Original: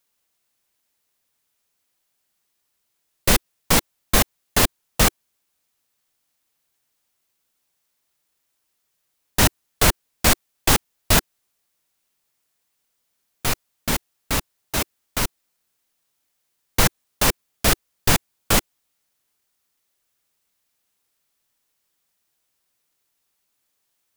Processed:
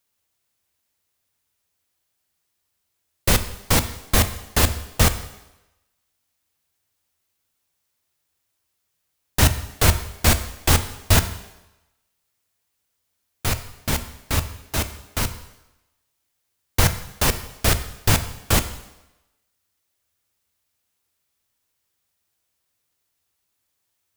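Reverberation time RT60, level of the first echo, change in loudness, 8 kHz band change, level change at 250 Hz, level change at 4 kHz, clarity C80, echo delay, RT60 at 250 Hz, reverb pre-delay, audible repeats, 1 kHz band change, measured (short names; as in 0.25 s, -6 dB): 1.0 s, none, -0.5 dB, -1.5 dB, -1.0 dB, -1.5 dB, 14.5 dB, none, 0.95 s, 6 ms, none, -1.5 dB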